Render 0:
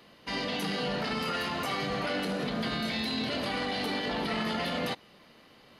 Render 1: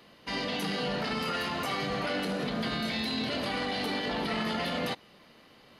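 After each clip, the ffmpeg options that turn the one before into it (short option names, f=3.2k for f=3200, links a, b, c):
-af anull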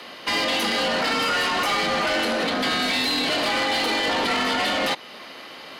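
-filter_complex "[0:a]alimiter=level_in=2.5dB:limit=-24dB:level=0:latency=1:release=240,volume=-2.5dB,afreqshift=34,asplit=2[a][b];[b]highpass=f=720:p=1,volume=17dB,asoftclip=type=tanh:threshold=-22.5dB[c];[a][c]amix=inputs=2:normalize=0,lowpass=f=7.7k:p=1,volume=-6dB,volume=7.5dB"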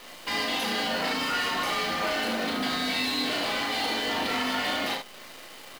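-filter_complex "[0:a]acrusher=bits=7:dc=4:mix=0:aa=0.000001,asplit=2[a][b];[b]aecho=0:1:35|75:0.631|0.501[c];[a][c]amix=inputs=2:normalize=0,volume=-7.5dB"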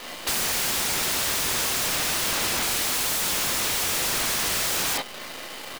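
-filter_complex "[0:a]asplit=2[a][b];[b]acrusher=bits=6:mix=0:aa=0.000001,volume=-8dB[c];[a][c]amix=inputs=2:normalize=0,aeval=exprs='(mod(18.8*val(0)+1,2)-1)/18.8':c=same,volume=5dB"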